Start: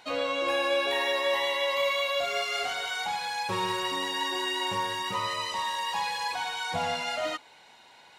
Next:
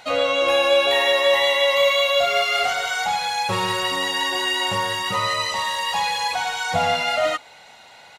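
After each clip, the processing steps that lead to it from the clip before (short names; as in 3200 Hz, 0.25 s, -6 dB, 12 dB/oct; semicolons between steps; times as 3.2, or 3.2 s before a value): comb 1.5 ms, depth 43%; gain +8 dB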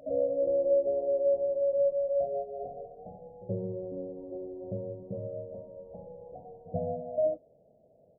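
rippled Chebyshev low-pass 660 Hz, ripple 3 dB; reverse echo 82 ms -19.5 dB; gain -4 dB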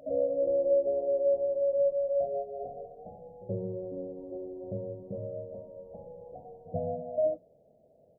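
notches 60/120/180 Hz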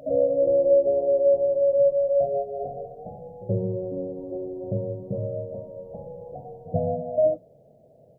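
bell 130 Hz +8.5 dB 0.49 oct; gain +7 dB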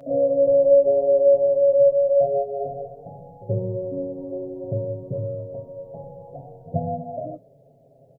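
comb 7.3 ms, depth 97%; gain -2 dB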